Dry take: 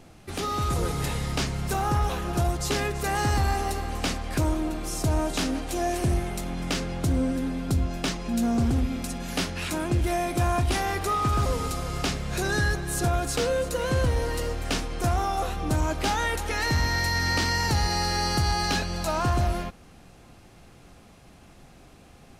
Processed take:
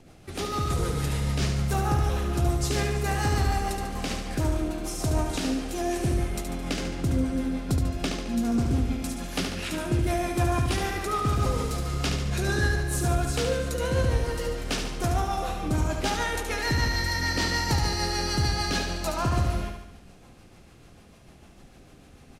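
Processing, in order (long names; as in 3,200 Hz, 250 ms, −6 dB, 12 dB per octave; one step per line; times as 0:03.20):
rotating-speaker cabinet horn 6.7 Hz
on a send: repeating echo 72 ms, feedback 54%, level −5.5 dB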